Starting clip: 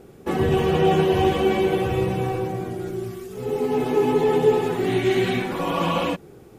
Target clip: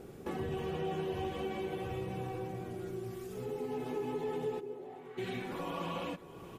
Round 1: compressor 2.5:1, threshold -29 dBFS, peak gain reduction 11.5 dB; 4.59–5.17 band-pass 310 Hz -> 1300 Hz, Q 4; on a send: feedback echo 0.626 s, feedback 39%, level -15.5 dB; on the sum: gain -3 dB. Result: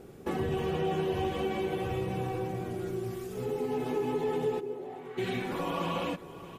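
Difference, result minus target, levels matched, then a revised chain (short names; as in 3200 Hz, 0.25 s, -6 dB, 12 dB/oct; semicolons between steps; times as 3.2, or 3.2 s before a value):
compressor: peak gain reduction -6 dB
compressor 2.5:1, threshold -39 dBFS, peak gain reduction 17.5 dB; 4.59–5.17 band-pass 310 Hz -> 1300 Hz, Q 4; on a send: feedback echo 0.626 s, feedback 39%, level -15.5 dB; on the sum: gain -3 dB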